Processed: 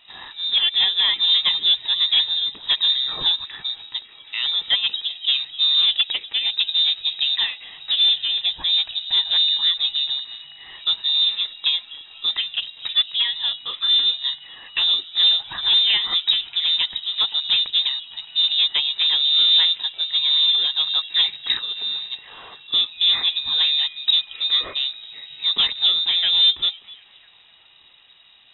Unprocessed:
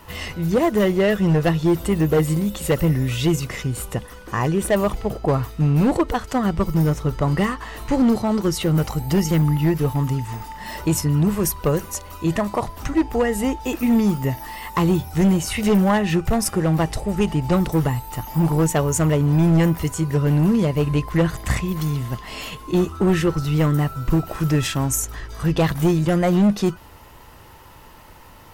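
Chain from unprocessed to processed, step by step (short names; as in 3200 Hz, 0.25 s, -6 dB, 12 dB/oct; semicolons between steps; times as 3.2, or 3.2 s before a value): delay with a stepping band-pass 0.25 s, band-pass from 500 Hz, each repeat 0.7 oct, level -9.5 dB; inverted band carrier 3800 Hz; upward expander 1.5:1, over -29 dBFS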